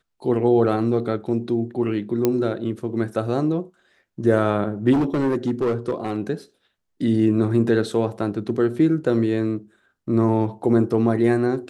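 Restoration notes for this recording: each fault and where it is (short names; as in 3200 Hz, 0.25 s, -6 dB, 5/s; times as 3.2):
2.25 pop -6 dBFS
4.92–6.2 clipped -16.5 dBFS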